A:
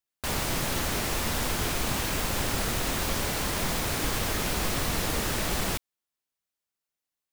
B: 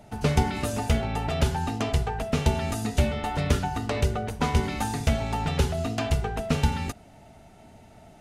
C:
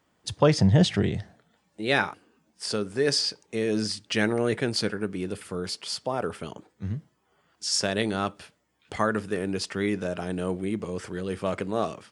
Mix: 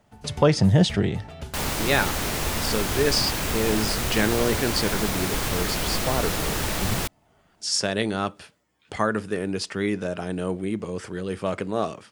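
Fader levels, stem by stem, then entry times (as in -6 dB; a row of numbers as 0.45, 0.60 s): +2.0, -13.5, +1.5 dB; 1.30, 0.00, 0.00 s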